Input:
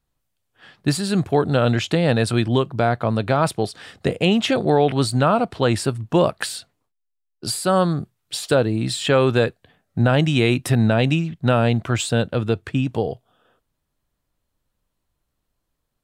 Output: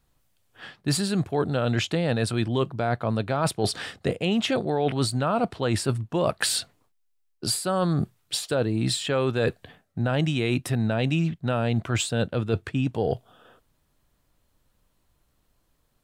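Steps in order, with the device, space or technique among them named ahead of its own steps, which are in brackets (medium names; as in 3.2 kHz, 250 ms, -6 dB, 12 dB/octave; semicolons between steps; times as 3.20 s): compression on the reversed sound (reverse; compression 6:1, threshold -29 dBFS, peak gain reduction 16 dB; reverse); trim +7 dB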